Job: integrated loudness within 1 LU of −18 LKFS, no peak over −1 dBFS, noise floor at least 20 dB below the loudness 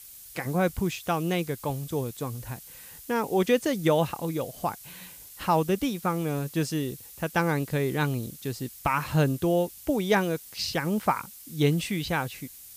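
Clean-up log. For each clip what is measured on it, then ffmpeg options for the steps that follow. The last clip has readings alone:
background noise floor −47 dBFS; target noise floor −48 dBFS; integrated loudness −28.0 LKFS; sample peak −10.0 dBFS; target loudness −18.0 LKFS
→ -af "afftdn=noise_reduction=6:noise_floor=-47"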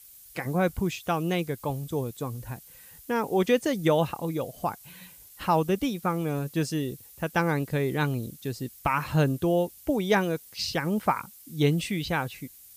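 background noise floor −51 dBFS; integrated loudness −28.0 LKFS; sample peak −10.0 dBFS; target loudness −18.0 LKFS
→ -af "volume=10dB,alimiter=limit=-1dB:level=0:latency=1"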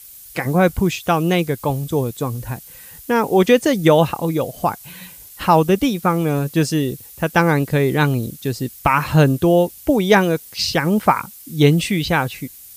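integrated loudness −18.0 LKFS; sample peak −1.0 dBFS; background noise floor −41 dBFS

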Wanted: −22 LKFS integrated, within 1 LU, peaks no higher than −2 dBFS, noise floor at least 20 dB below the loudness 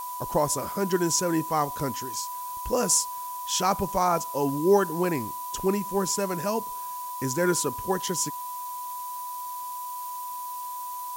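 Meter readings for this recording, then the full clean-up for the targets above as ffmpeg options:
interfering tone 990 Hz; level of the tone −33 dBFS; background noise floor −35 dBFS; target noise floor −48 dBFS; integrated loudness −27.5 LKFS; sample peak −9.5 dBFS; target loudness −22.0 LKFS
→ -af "bandreject=frequency=990:width=30"
-af "afftdn=noise_reduction=13:noise_floor=-35"
-af "volume=5.5dB"

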